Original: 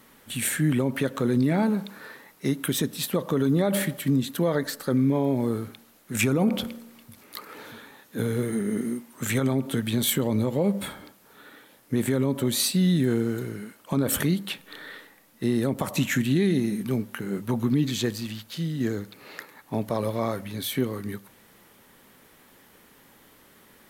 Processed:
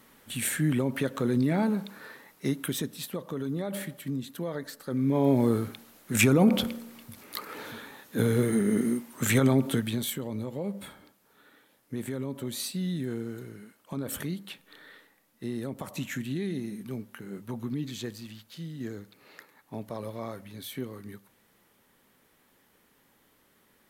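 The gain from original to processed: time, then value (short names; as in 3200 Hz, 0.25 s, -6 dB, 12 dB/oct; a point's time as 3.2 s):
2.48 s -3 dB
3.22 s -10 dB
4.85 s -10 dB
5.28 s +2 dB
9.66 s +2 dB
10.15 s -10 dB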